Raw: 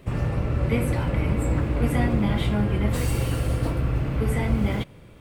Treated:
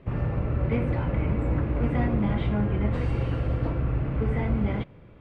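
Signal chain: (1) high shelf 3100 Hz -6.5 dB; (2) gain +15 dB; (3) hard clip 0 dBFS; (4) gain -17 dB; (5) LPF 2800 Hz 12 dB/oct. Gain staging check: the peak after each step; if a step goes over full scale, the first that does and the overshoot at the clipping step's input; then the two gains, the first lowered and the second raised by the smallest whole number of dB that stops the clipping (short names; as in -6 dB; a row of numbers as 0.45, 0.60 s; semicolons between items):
-10.0, +5.0, 0.0, -17.0, -17.0 dBFS; step 2, 5.0 dB; step 2 +10 dB, step 4 -12 dB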